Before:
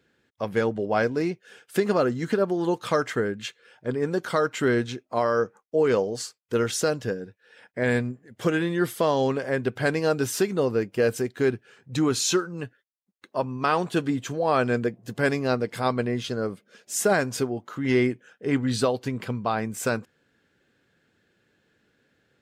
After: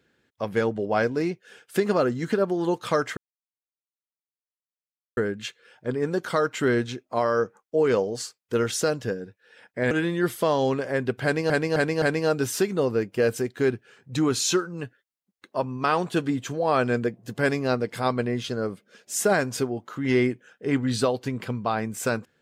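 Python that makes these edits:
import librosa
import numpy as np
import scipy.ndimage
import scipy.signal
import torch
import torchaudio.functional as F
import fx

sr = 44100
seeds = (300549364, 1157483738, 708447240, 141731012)

y = fx.edit(x, sr, fx.insert_silence(at_s=3.17, length_s=2.0),
    fx.cut(start_s=7.91, length_s=0.58),
    fx.repeat(start_s=9.82, length_s=0.26, count=4), tone=tone)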